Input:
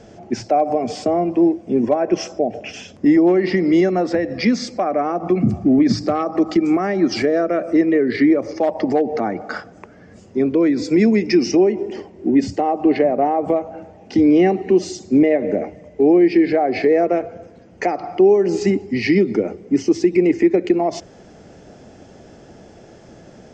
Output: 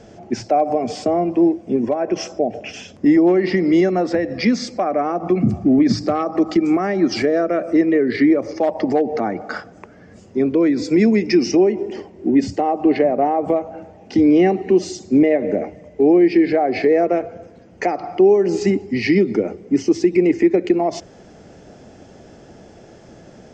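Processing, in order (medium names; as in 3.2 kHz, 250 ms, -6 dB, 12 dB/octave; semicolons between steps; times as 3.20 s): 1.75–2.16 s: compression, threshold -15 dBFS, peak gain reduction 4.5 dB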